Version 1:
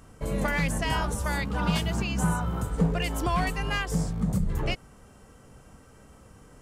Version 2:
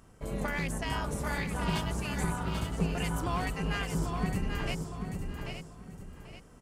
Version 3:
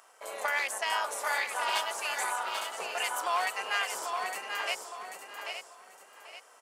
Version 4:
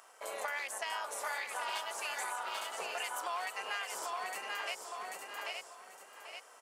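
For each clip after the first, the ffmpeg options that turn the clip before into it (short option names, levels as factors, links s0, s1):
-filter_complex "[0:a]asplit=2[s0][s1];[s1]aecho=0:1:862:0.355[s2];[s0][s2]amix=inputs=2:normalize=0,tremolo=f=210:d=0.621,asplit=2[s3][s4];[s4]aecho=0:1:789|1578|2367:0.501|0.11|0.0243[s5];[s3][s5]amix=inputs=2:normalize=0,volume=0.668"
-af "highpass=f=620:w=0.5412,highpass=f=620:w=1.3066,volume=2"
-af "acompressor=threshold=0.0141:ratio=3"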